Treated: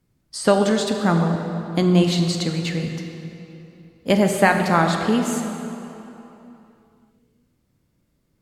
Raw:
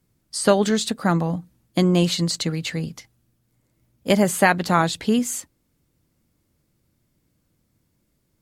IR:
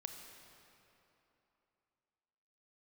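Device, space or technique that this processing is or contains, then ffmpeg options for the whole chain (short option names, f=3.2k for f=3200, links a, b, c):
swimming-pool hall: -filter_complex "[1:a]atrim=start_sample=2205[a];[0:a][a]afir=irnorm=-1:irlink=0,highshelf=f=5.7k:g=-7,volume=4.5dB"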